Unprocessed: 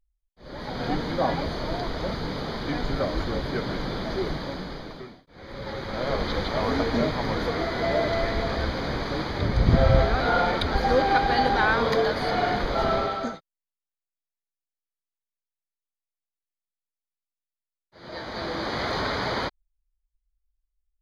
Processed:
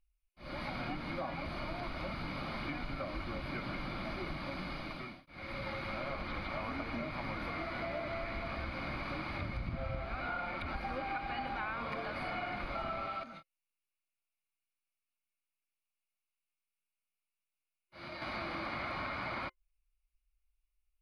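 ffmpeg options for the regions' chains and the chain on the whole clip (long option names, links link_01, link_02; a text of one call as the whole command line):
ffmpeg -i in.wav -filter_complex "[0:a]asettb=1/sr,asplit=3[link_01][link_02][link_03];[link_01]atrim=end=13.234[link_04];[link_02]atrim=start=13.23:end=18.22,asetpts=PTS-STARTPTS,afade=type=in:duration=0.004:curve=qsin,afade=type=out:start_time=4.986:duration=0.004:curve=qsin,acompressor=threshold=-39dB:ratio=10:attack=3.2:release=140:knee=1:detection=peak,asplit=2[link_05][link_06];[link_06]adelay=26,volume=-8dB[link_07];[link_05][link_07]amix=inputs=2:normalize=0,atrim=end_sample=220059[link_08];[link_03]atrim=start=18.216[link_09];[link_04][link_08]acrossfade=duration=0.004:curve1=hsin:curve2=qsin[link_10];[link_10][link_09]acrossfade=duration=0.004:curve1=qsin:curve2=hsin,acrossover=split=2700[link_11][link_12];[link_12]acompressor=threshold=-42dB:ratio=4:attack=1:release=60[link_13];[link_11][link_13]amix=inputs=2:normalize=0,superequalizer=7b=0.316:10b=1.78:12b=3.98:15b=0.447:16b=1.78,acompressor=threshold=-33dB:ratio=6,volume=-3.5dB" out.wav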